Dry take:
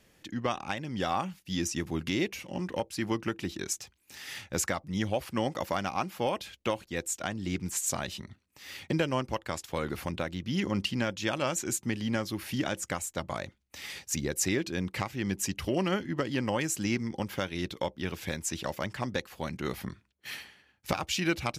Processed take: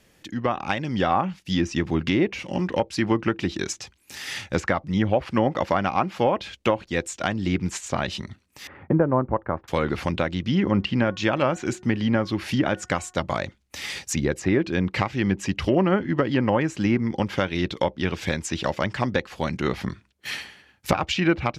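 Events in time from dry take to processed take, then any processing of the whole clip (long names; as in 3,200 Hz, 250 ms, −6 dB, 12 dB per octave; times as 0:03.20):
0:08.67–0:09.68: low-pass filter 1,400 Hz 24 dB per octave
0:10.75–0:13.19: hum removal 365 Hz, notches 5
whole clip: treble cut that deepens with the level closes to 1,600 Hz, closed at −25 dBFS; automatic gain control gain up to 5 dB; level +4 dB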